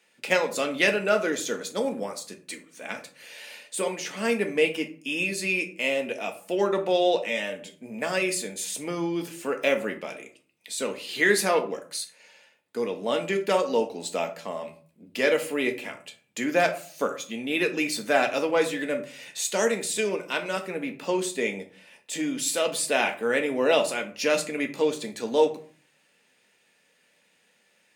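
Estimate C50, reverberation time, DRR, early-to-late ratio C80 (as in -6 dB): 13.0 dB, 0.45 s, 4.0 dB, 17.0 dB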